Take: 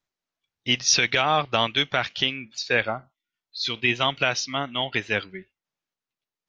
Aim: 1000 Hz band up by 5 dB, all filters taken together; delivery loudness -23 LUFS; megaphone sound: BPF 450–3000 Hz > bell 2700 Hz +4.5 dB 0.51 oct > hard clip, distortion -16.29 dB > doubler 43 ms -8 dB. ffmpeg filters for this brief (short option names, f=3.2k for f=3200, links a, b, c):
-filter_complex "[0:a]highpass=450,lowpass=3k,equalizer=f=1k:t=o:g=7,equalizer=f=2.7k:t=o:w=0.51:g=4.5,asoftclip=type=hard:threshold=-11dB,asplit=2[a][b];[b]adelay=43,volume=-8dB[c];[a][c]amix=inputs=2:normalize=0,volume=-1dB"